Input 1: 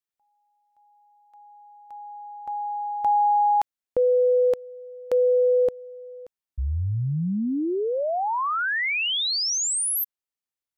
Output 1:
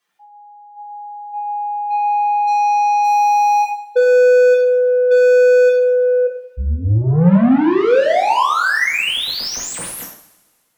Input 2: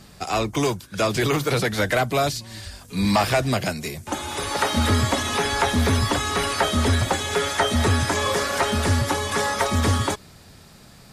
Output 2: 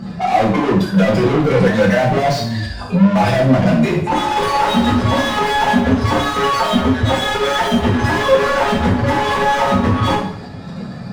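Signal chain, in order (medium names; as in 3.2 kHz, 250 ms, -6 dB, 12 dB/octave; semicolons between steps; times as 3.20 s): spectral contrast enhancement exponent 2.1; dynamic bell 190 Hz, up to +7 dB, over -41 dBFS, Q 2.6; overdrive pedal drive 37 dB, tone 1.3 kHz, clips at -7.5 dBFS; two-slope reverb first 0.56 s, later 1.8 s, from -20 dB, DRR -3.5 dB; trim -4 dB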